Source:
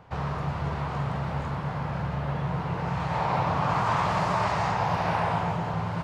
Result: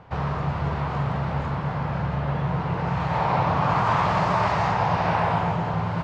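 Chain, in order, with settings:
high-frequency loss of the air 76 metres
level +4 dB

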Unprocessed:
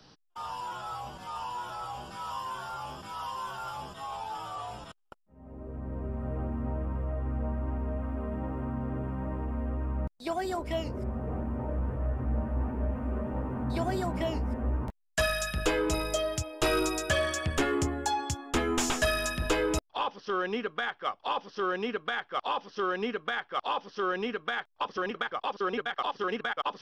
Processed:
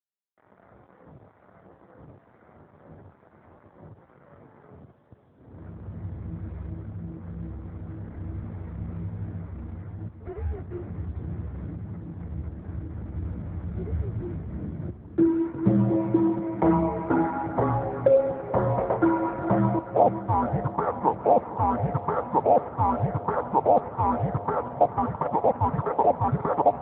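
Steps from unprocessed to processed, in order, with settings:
0:21.03–0:22.69: spike at every zero crossing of −26 dBFS
in parallel at −3 dB: downward compressor 16 to 1, threshold −36 dBFS, peak gain reduction 14 dB
on the sum: low-pass filter sweep 330 Hz → 1,000 Hz, 0:14.14–0:16.42
dead-zone distortion −43 dBFS
feedback delay with all-pass diffusion 518 ms, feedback 56%, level −10.5 dB
single-sideband voice off tune −300 Hz 170–2,300 Hz
level +5 dB
AMR narrowband 7.95 kbit/s 8,000 Hz

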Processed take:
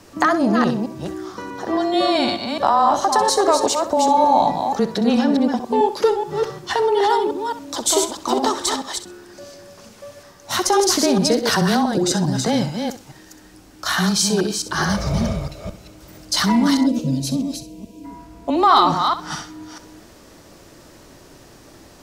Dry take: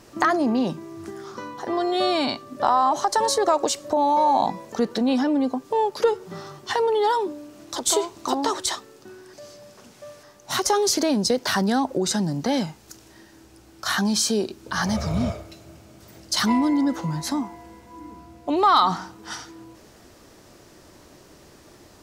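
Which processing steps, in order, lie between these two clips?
delay that plays each chunk backwards 215 ms, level −5 dB
frequency shifter −18 Hz
flutter between parallel walls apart 11 metres, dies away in 0.3 s
gain on a spectral selection 0:16.86–0:18.05, 670–2,300 Hz −19 dB
level +3 dB

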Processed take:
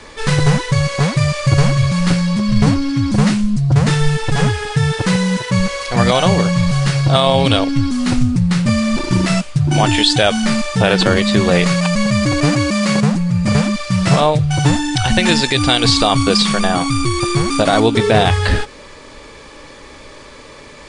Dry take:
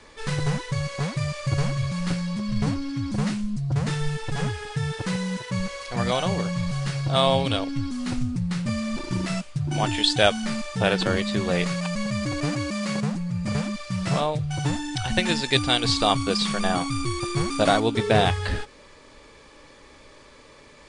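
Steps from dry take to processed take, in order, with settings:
0:16.42–0:17.73: downward compressor 3 to 1, threshold −24 dBFS, peak gain reduction 8 dB
boost into a limiter +13 dB
level −1 dB

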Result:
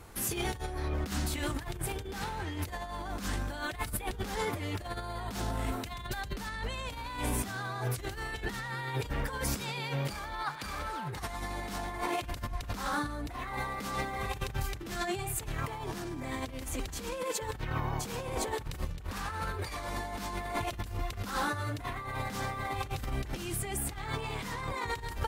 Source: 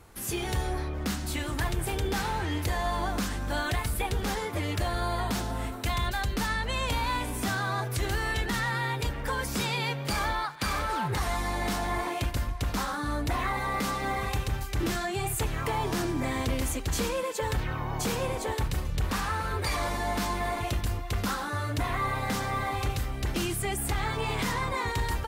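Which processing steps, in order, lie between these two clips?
compressor whose output falls as the input rises −33 dBFS, ratio −0.5
level −1.5 dB

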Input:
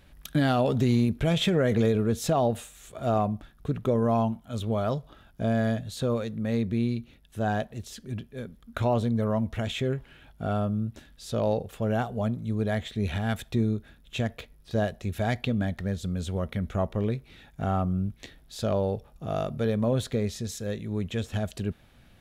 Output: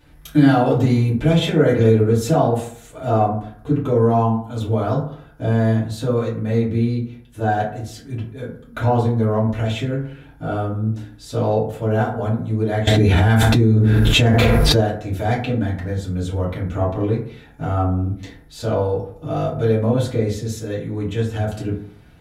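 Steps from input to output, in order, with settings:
feedback delay network reverb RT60 0.59 s, low-frequency decay 1×, high-frequency decay 0.4×, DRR −8 dB
0:12.87–0:14.81: envelope flattener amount 100%
level −2 dB

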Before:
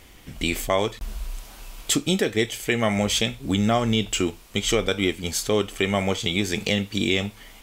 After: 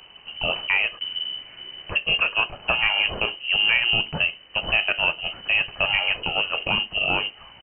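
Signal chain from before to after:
pitch-shifted copies added −5 semitones −10 dB
voice inversion scrambler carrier 3,000 Hz

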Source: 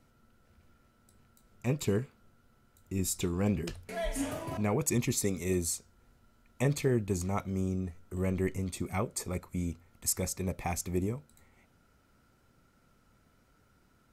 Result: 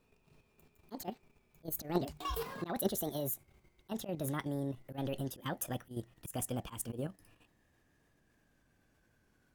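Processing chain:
gliding playback speed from 185% → 111%
volume swells 120 ms
output level in coarse steps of 9 dB

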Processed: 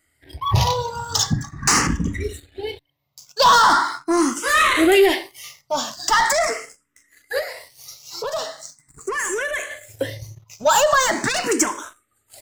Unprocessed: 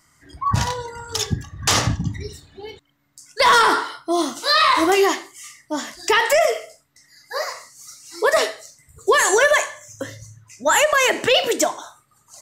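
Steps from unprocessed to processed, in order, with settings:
leveller curve on the samples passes 2
0:07.39–0:09.71: downward compressor 4 to 1, threshold −23 dBFS, peak gain reduction 11 dB
frequency shifter mixed with the dry sound +0.41 Hz

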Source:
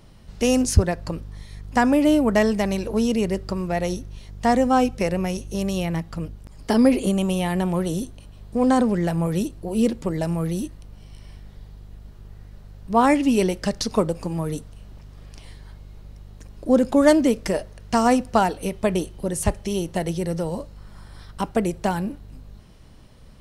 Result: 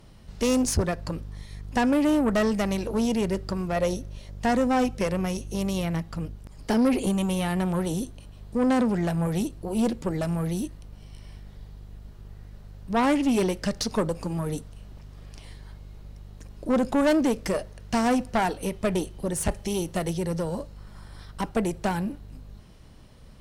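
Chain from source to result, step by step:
0:19.51–0:20.14: high-shelf EQ 6,300 Hz +4 dB
tube saturation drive 17 dB, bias 0.4
0:03.76–0:04.39: parametric band 570 Hz +11 dB 0.23 octaves

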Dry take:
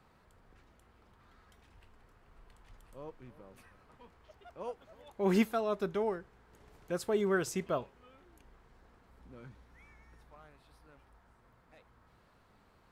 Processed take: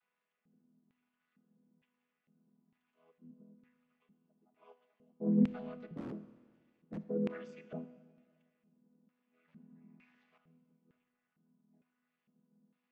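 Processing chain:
channel vocoder with a chord as carrier major triad, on E3
dynamic equaliser 620 Hz, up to +8 dB, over −49 dBFS, Q 0.89
0:05.92–0:07.01: wrap-around overflow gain 25.5 dB
0:09.48–0:10.38: leveller curve on the samples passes 3
soft clipping −14.5 dBFS, distortion −23 dB
auto-filter band-pass square 1.1 Hz 210–2,600 Hz
four-comb reverb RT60 1.7 s, combs from 25 ms, DRR 12.5 dB

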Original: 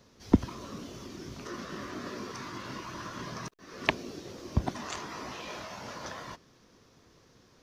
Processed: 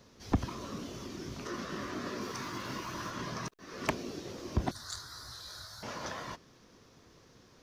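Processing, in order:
0:02.21–0:03.11: high-shelf EQ 11,000 Hz +10.5 dB
soft clipping −21 dBFS, distortion −6 dB
0:04.71–0:05.83: drawn EQ curve 110 Hz 0 dB, 200 Hz −21 dB, 1,000 Hz −16 dB, 1,500 Hz −3 dB, 2,700 Hz −28 dB, 4,000 Hz +6 dB, 6,200 Hz −3 dB, 9,300 Hz +8 dB, 14,000 Hz +5 dB
level +1 dB

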